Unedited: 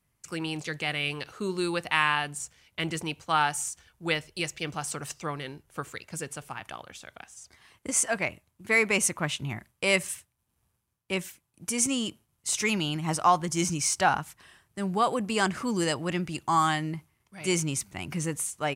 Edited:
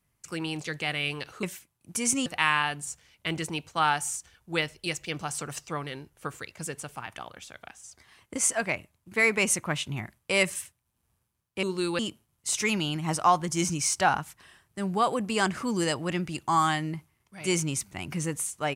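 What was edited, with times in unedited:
0:01.43–0:01.79: swap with 0:11.16–0:11.99

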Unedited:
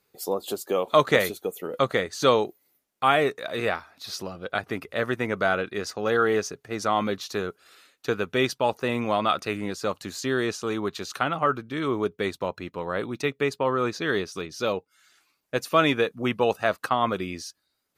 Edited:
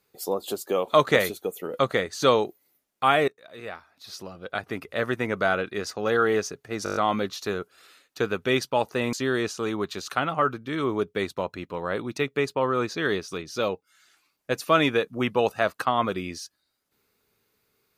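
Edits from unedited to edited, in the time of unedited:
0:03.28–0:05.04: fade in, from −23.5 dB
0:06.84: stutter 0.02 s, 7 plays
0:09.01–0:10.17: remove

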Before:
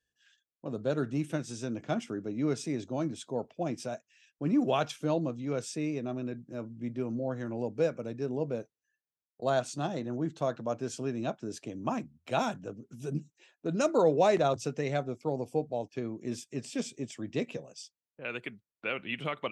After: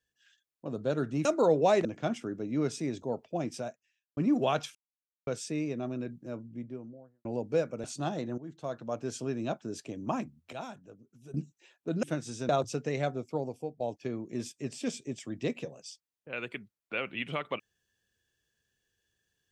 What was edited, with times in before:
0:01.25–0:01.71: swap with 0:13.81–0:14.41
0:02.89–0:03.29: remove
0:03.83–0:04.43: fade out and dull
0:05.01–0:05.53: silence
0:06.41–0:07.51: fade out and dull
0:08.10–0:09.62: remove
0:10.16–0:10.89: fade in linear, from −15 dB
0:12.31–0:13.12: clip gain −11.5 dB
0:15.23–0:15.72: fade out, to −13.5 dB

